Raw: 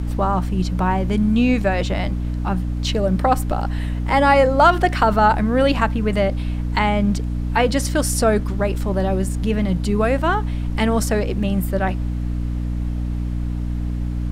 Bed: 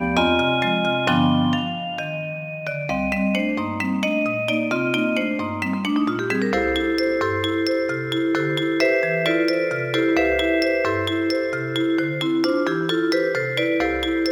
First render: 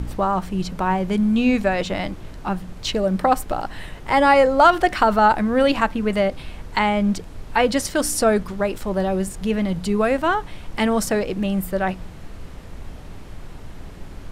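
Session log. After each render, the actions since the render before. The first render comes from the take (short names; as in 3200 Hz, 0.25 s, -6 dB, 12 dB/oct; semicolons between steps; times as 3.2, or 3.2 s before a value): de-hum 60 Hz, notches 5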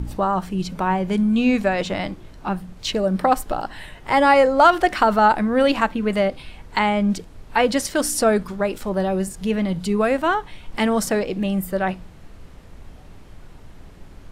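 noise print and reduce 6 dB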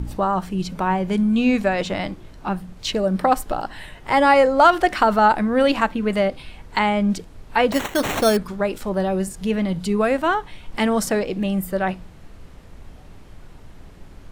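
7.72–8.37 sample-rate reducer 4900 Hz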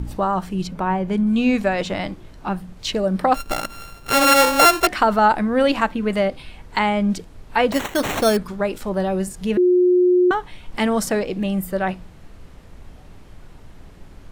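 0.67–1.27 high shelf 2800 Hz -7.5 dB; 3.34–4.87 sample sorter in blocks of 32 samples; 9.57–10.31 bleep 360 Hz -11.5 dBFS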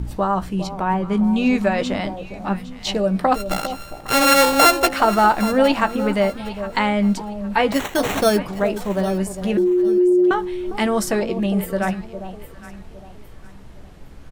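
doubler 15 ms -11 dB; echo with dull and thin repeats by turns 0.405 s, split 900 Hz, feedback 54%, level -10 dB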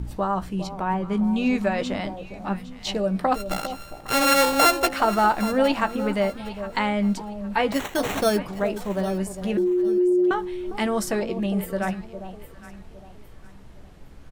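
gain -4.5 dB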